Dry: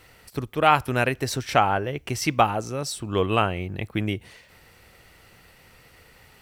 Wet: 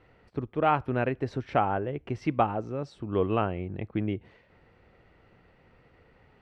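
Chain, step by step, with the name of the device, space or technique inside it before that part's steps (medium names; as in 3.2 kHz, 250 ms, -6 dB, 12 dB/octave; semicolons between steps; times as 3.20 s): phone in a pocket (low-pass 3.3 kHz 12 dB/octave; peaking EQ 310 Hz +4 dB 2.1 oct; treble shelf 2.2 kHz -11 dB); trim -5.5 dB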